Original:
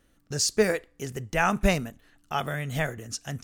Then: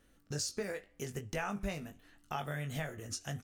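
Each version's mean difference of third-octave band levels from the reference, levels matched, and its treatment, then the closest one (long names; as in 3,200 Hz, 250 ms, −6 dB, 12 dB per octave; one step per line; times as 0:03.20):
5.0 dB: downward compressor 4 to 1, threshold −34 dBFS, peak gain reduction 15 dB
flanger 0.82 Hz, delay 6.7 ms, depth 5.7 ms, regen +85%
double-tracking delay 20 ms −7 dB
level +1.5 dB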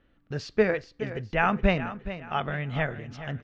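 7.5 dB: low-pass filter 3,300 Hz 24 dB per octave
repeating echo 420 ms, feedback 35%, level −12.5 dB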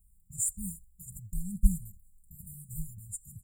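20.5 dB: comb filter 3.6 ms, depth 97%
bit-depth reduction 12 bits, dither none
linear-phase brick-wall band-stop 190–7,000 Hz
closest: first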